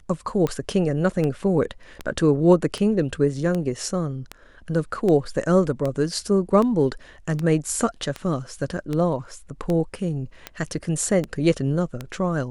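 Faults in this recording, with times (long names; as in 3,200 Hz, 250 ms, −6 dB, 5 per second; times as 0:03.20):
scratch tick 78 rpm −14 dBFS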